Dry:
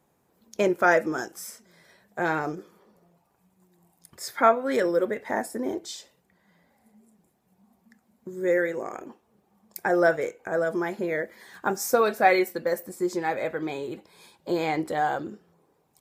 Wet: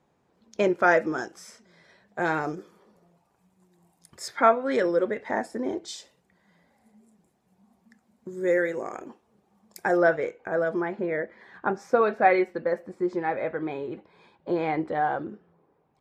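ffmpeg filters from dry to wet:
-af "asetnsamples=n=441:p=0,asendcmd='2.19 lowpass f 9800;4.28 lowpass f 5200;5.88 lowpass f 9600;9.97 lowpass f 3600;10.81 lowpass f 2200',lowpass=5200"

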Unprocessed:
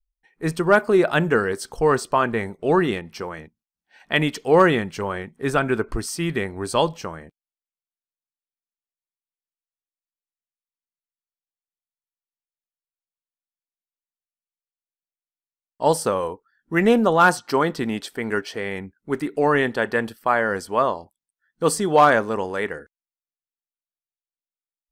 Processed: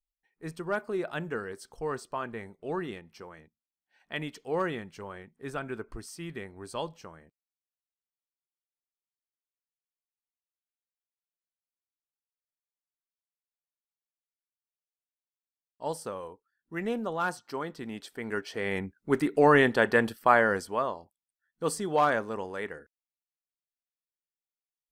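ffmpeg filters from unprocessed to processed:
-af "volume=0.891,afade=t=in:st=17.77:d=0.73:silence=0.421697,afade=t=in:st=18.5:d=0.27:silence=0.473151,afade=t=out:st=20.36:d=0.46:silence=0.354813"

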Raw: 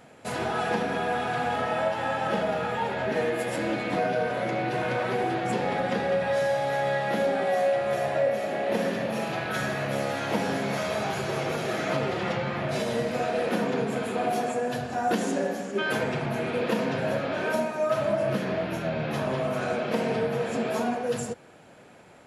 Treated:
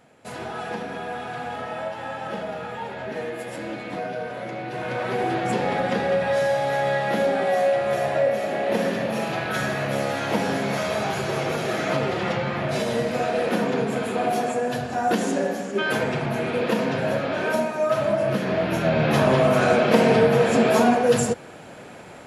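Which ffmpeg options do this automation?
-af "volume=3.16,afade=t=in:st=4.68:d=0.66:silence=0.421697,afade=t=in:st=18.41:d=0.74:silence=0.473151"

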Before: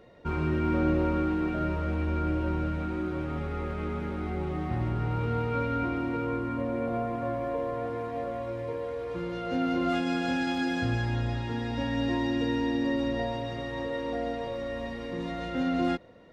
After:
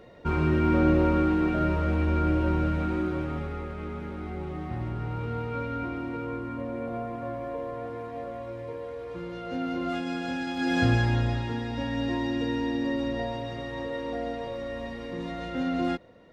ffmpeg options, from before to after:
-af "volume=4.73,afade=t=out:st=2.94:d=0.74:silence=0.446684,afade=t=in:st=10.55:d=0.28:silence=0.334965,afade=t=out:st=10.83:d=0.83:silence=0.446684"

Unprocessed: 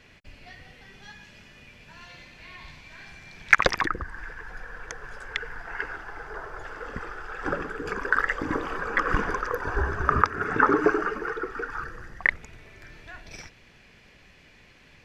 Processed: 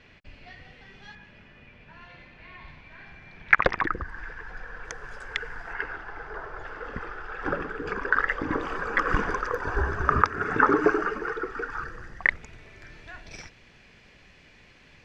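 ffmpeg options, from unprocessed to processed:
-af "asetnsamples=n=441:p=0,asendcmd='1.15 lowpass f 2400;3.88 lowpass f 5200;4.85 lowpass f 9500;5.73 lowpass f 4300;8.6 lowpass f 8100',lowpass=4300"

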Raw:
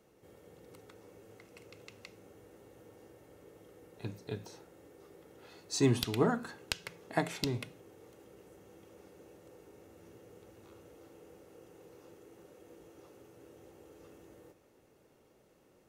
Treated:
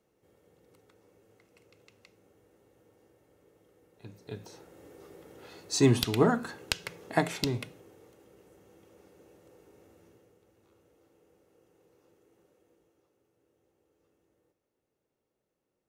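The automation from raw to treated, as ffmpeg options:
-af "volume=1.78,afade=t=in:st=4.05:d=0.87:silence=0.237137,afade=t=out:st=7.24:d=0.93:silence=0.446684,afade=t=out:st=9.9:d=0.48:silence=0.398107,afade=t=out:st=12.4:d=0.69:silence=0.421697"

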